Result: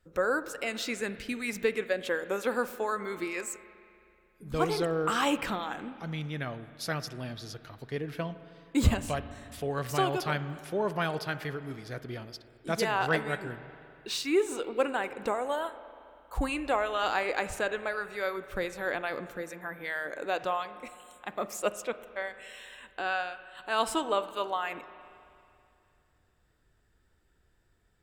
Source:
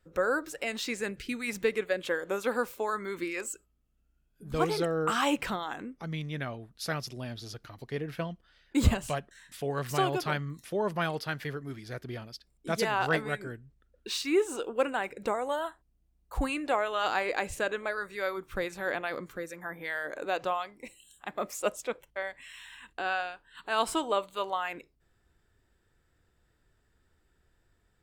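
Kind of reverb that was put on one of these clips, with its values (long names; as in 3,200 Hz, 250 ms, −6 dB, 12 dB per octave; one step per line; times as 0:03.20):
spring reverb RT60 2.6 s, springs 39/54 ms, chirp 65 ms, DRR 13 dB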